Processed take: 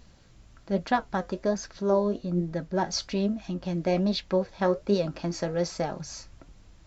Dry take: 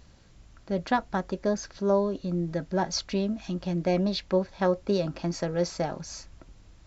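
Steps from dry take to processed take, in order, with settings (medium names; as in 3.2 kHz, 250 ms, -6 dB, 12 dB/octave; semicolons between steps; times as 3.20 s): flange 1.2 Hz, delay 3.8 ms, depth 6.2 ms, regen +72%; 1.91–3.65 s: tape noise reduction on one side only decoder only; trim +4.5 dB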